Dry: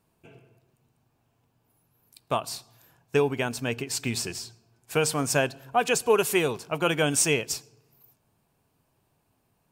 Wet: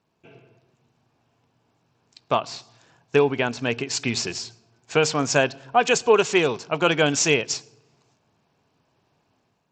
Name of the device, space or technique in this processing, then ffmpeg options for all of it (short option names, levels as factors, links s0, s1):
Bluetooth headset: -filter_complex "[0:a]asettb=1/sr,asplit=3[s0][s1][s2];[s0]atrim=end=2.424[s3];[s1]atrim=start=2.42:end=3.68,asetpts=PTS-STARTPTS,afade=t=in:d=0.004:c=qsin,afade=t=out:st=1.256:d=0.004:c=qsin,acrossover=split=4000[s4][s5];[s5]acompressor=threshold=0.00891:ratio=4:attack=1:release=60[s6];[s4][s6]amix=inputs=2:normalize=0[s7];[s2]atrim=start=3.676[s8];[s3][s7]acrossfade=d=0.004:c1=hsin:c2=qsin[s9];[s9][s8]acrossfade=d=0.004:c1=qsin:c2=hsin,highpass=f=150:p=1,dynaudnorm=f=120:g=5:m=1.88,aresample=16000,aresample=44100" -ar 32000 -c:a sbc -b:a 64k